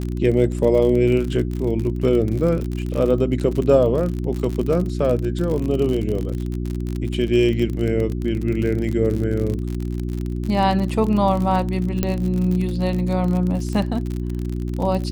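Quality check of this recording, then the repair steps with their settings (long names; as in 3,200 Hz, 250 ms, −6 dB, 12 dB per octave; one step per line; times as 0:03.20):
surface crackle 47 per second −24 dBFS
mains hum 60 Hz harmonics 6 −25 dBFS
0:12.03: click −7 dBFS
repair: click removal
hum removal 60 Hz, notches 6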